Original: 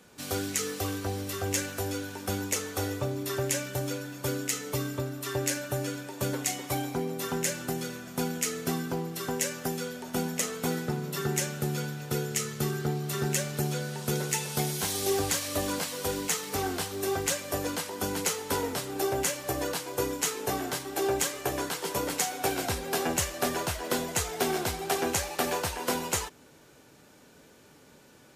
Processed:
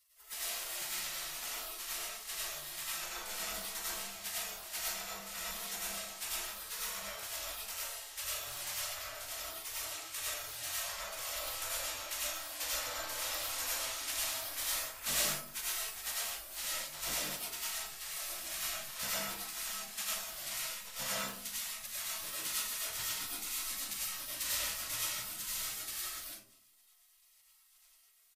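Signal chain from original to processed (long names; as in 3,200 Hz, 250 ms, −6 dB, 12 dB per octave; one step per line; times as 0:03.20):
gate on every frequency bin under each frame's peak −25 dB weak
double-tracking delay 40 ms −11.5 dB
comb and all-pass reverb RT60 0.56 s, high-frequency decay 0.3×, pre-delay 60 ms, DRR −5 dB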